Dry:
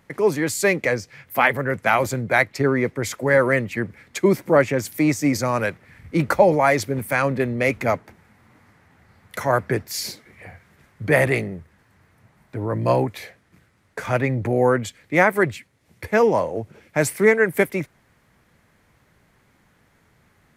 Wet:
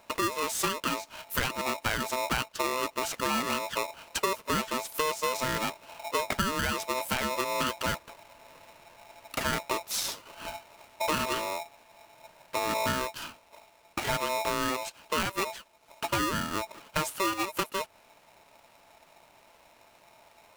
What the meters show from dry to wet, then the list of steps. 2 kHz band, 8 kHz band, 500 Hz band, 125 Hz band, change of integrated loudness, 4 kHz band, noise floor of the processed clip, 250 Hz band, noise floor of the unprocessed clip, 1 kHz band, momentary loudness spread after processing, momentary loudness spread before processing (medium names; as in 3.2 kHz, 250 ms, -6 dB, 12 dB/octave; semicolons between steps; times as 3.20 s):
-10.5 dB, -2.0 dB, -14.0 dB, -15.5 dB, -10.0 dB, +3.0 dB, -60 dBFS, -12.5 dB, -61 dBFS, -5.5 dB, 9 LU, 13 LU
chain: peaking EQ 87 Hz +5 dB 1.1 oct; compression 6:1, threshold -27 dBFS, peak gain reduction 16.5 dB; polarity switched at an audio rate 770 Hz